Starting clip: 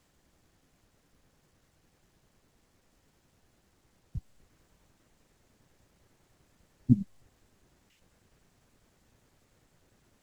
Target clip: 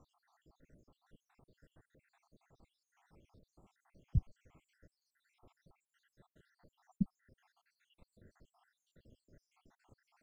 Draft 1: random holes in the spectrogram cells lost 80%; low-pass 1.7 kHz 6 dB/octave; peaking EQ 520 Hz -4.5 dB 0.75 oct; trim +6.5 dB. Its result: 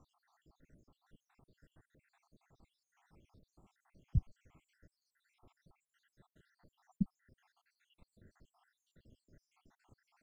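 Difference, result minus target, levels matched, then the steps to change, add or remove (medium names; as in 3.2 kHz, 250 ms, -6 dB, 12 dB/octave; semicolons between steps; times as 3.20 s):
500 Hz band -3.0 dB
remove: peaking EQ 520 Hz -4.5 dB 0.75 oct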